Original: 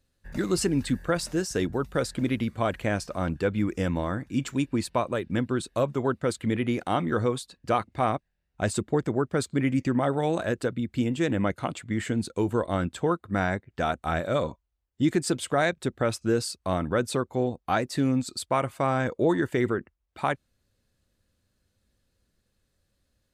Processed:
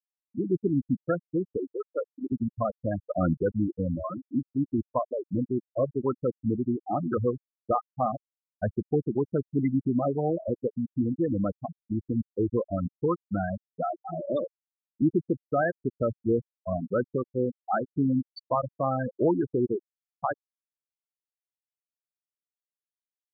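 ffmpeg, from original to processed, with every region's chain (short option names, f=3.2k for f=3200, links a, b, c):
-filter_complex "[0:a]asettb=1/sr,asplit=3[a][b][c];[a]atrim=end=1.574[d];[b]atrim=start=1.57:end=2.32,asetpts=PTS-STARTPTS,afade=t=in:d=0.004:c=qsin,afade=t=out:st=0.746:d=0.004:c=qsin,highpass=280,lowshelf=f=490:g=-2[e];[c]atrim=start=2.316[f];[d][e]acrossfade=d=0.004:c1=hsin:c2=qsin[g];[g][f]acrossfade=d=0.004:c1=qsin:c2=hsin,asettb=1/sr,asplit=3[h][i][j];[h]atrim=end=3.024[k];[i]atrim=start=3.02:end=3.43,asetpts=PTS-STARTPTS,afade=t=in:d=0.004:c=qsin,afade=t=out:st=0.406:d=0.004:c=qsin,highpass=100,lowpass=2.9k,aeval=exprs='0.2*sin(PI/2*1.41*val(0)/0.2)':c=same[l];[j]atrim=start=3.426[m];[k][l]acrossfade=d=0.004:c1=hsin:c2=qsin[n];[n][m]acrossfade=d=0.004:c1=qsin:c2=hsin,asettb=1/sr,asplit=3[o][p][q];[o]atrim=end=4.044[r];[p]atrim=start=4.04:end=4.55,asetpts=PTS-STARTPTS,afade=t=in:d=0.004:c=qsin,afade=t=out:st=0.506:d=0.004:c=qsin,acompressor=mode=upward:threshold=-32dB:ratio=2.5:attack=3.2:release=140:knee=2.83:detection=peak,asplit=2[s][t];[t]highpass=f=720:p=1,volume=15dB,asoftclip=type=tanh:threshold=-14dB[u];[s][u]amix=inputs=2:normalize=0,lowpass=f=1.2k:p=1,volume=-6dB[v];[q]atrim=start=4.546[w];[r][v]acrossfade=d=0.004:c1=hsin:c2=qsin[x];[x][w]acrossfade=d=0.004:c1=qsin:c2=hsin,asettb=1/sr,asplit=3[y][z][aa];[y]atrim=end=13.894[ab];[z]atrim=start=13.89:end=15.02,asetpts=PTS-STARTPTS,afade=t=in:d=0.004:c=qsin,afade=t=out:st=1.126:d=0.004:c=qsin,aeval=exprs='val(0)+0.5*0.0282*sgn(val(0))':c=same,highpass=170,equalizer=f=340:t=q:w=4:g=5,equalizer=f=510:t=q:w=4:g=-4,equalizer=f=750:t=q:w=4:g=-3,equalizer=f=1.3k:t=q:w=4:g=-7,equalizer=f=3.2k:t=q:w=4:g=9,lowpass=f=4.1k:w=0.5412,lowpass=f=4.1k:w=1.3066[ac];[aa]atrim=start=15.016[ad];[ab][ac]acrossfade=d=0.004:c1=hsin:c2=qsin[ae];[ae][ad]acrossfade=d=0.004:c1=qsin:c2=hsin,highpass=f=41:p=1,afftfilt=real='re*gte(hypot(re,im),0.2)':imag='im*gte(hypot(re,im),0.2)':win_size=1024:overlap=0.75"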